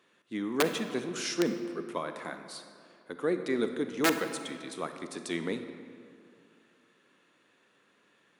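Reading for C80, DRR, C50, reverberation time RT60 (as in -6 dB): 9.0 dB, 7.5 dB, 8.0 dB, 2.4 s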